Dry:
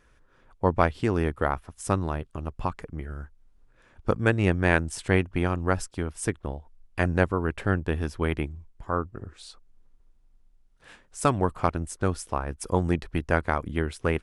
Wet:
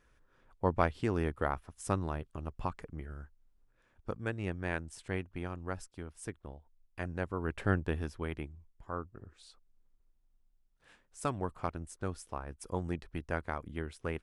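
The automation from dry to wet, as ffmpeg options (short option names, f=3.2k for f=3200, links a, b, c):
-af "volume=2.5dB,afade=t=out:st=2.83:d=1.28:silence=0.446684,afade=t=in:st=7.22:d=0.48:silence=0.334965,afade=t=out:st=7.7:d=0.55:silence=0.446684"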